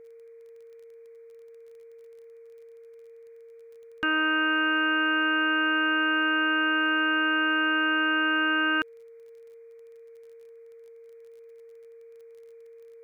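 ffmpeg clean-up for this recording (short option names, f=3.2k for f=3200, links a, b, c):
-af "adeclick=t=4,bandreject=f=460:w=30,afftdn=nr=25:nf=-49"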